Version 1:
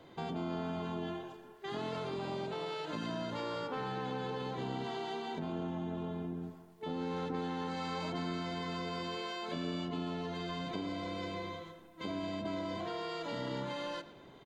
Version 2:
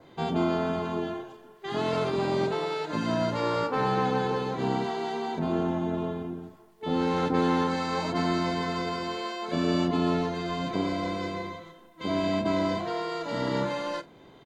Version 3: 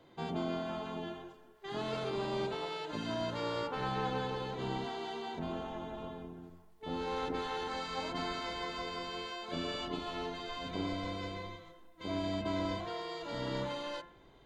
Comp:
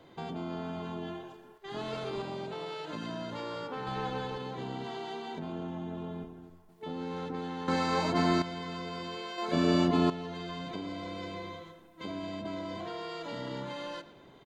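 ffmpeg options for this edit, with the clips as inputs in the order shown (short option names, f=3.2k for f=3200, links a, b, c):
-filter_complex "[2:a]asplit=3[a][b][c];[1:a]asplit=2[d][e];[0:a]asplit=6[f][g][h][i][j][k];[f]atrim=end=1.582[l];[a]atrim=start=1.578:end=2.222[m];[g]atrim=start=2.218:end=3.872[n];[b]atrim=start=3.868:end=4.382[o];[h]atrim=start=4.378:end=6.242[p];[c]atrim=start=6.238:end=6.692[q];[i]atrim=start=6.688:end=7.682[r];[d]atrim=start=7.678:end=8.422[s];[j]atrim=start=8.418:end=9.382[t];[e]atrim=start=9.378:end=10.102[u];[k]atrim=start=10.098[v];[l][m]acrossfade=d=0.004:c1=hsin:c2=hsin[w];[w][n]acrossfade=d=0.004:c1=hsin:c2=hsin[x];[x][o]acrossfade=d=0.004:c1=hsin:c2=hsin[y];[y][p]acrossfade=d=0.004:c1=hsin:c2=hsin[z];[z][q]acrossfade=d=0.004:c1=hsin:c2=hsin[aa];[aa][r]acrossfade=d=0.004:c1=hsin:c2=hsin[ab];[ab][s]acrossfade=d=0.004:c1=hsin:c2=hsin[ac];[ac][t]acrossfade=d=0.004:c1=hsin:c2=hsin[ad];[ad][u]acrossfade=d=0.004:c1=hsin:c2=hsin[ae];[ae][v]acrossfade=d=0.004:c1=hsin:c2=hsin"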